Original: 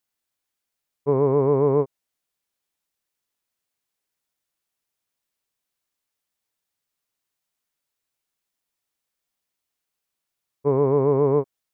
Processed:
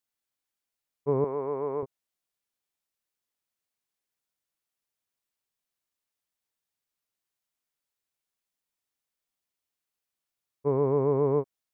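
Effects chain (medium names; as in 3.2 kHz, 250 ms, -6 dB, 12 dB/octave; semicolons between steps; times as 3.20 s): 1.24–1.83 s: high-pass 780 Hz 6 dB/octave; trim -5.5 dB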